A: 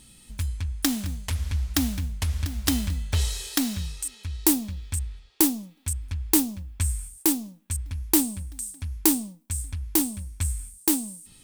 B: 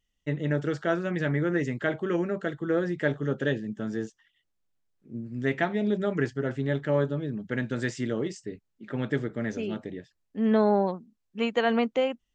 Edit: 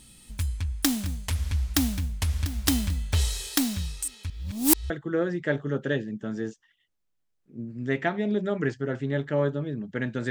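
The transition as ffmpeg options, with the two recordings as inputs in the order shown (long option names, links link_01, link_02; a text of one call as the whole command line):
ffmpeg -i cue0.wav -i cue1.wav -filter_complex "[0:a]apad=whole_dur=10.3,atrim=end=10.3,asplit=2[link_01][link_02];[link_01]atrim=end=4.302[link_03];[link_02]atrim=start=4.298:end=4.902,asetpts=PTS-STARTPTS,areverse[link_04];[1:a]atrim=start=2.458:end=7.86[link_05];[link_03][link_04]acrossfade=duration=0.004:curve1=hsin:curve2=hsin[link_06];[link_06][link_05]acrossfade=duration=0.004:curve1=hsin:curve2=hsin" out.wav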